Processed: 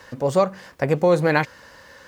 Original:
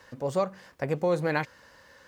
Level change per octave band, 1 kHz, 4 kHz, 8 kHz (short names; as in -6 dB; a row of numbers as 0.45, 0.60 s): +8.5 dB, +8.5 dB, n/a